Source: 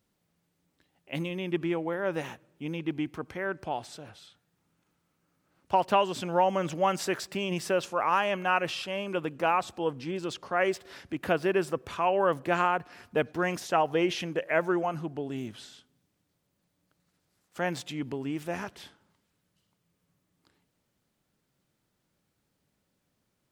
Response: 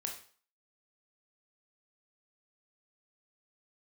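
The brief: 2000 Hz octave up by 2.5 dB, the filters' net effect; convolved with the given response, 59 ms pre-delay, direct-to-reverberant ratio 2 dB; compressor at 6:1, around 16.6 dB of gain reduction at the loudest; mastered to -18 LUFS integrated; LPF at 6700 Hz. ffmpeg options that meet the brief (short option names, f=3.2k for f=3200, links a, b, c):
-filter_complex "[0:a]lowpass=6.7k,equalizer=f=2k:t=o:g=3.5,acompressor=threshold=-38dB:ratio=6,asplit=2[a][b];[1:a]atrim=start_sample=2205,adelay=59[c];[b][c]afir=irnorm=-1:irlink=0,volume=-2dB[d];[a][d]amix=inputs=2:normalize=0,volume=22dB"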